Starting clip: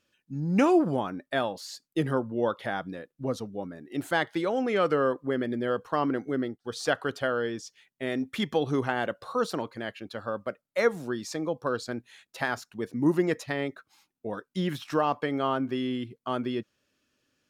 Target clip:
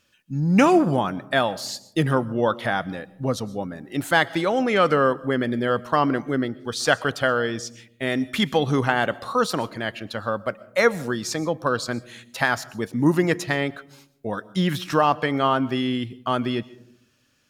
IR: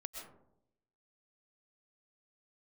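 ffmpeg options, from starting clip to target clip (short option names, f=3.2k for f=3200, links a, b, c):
-filter_complex "[0:a]equalizer=f=370:w=0.97:g=-5.5,asplit=2[a][b];[1:a]atrim=start_sample=2205,lowshelf=f=230:g=10,highshelf=f=4k:g=10[c];[b][c]afir=irnorm=-1:irlink=0,volume=-15dB[d];[a][d]amix=inputs=2:normalize=0,volume=8dB"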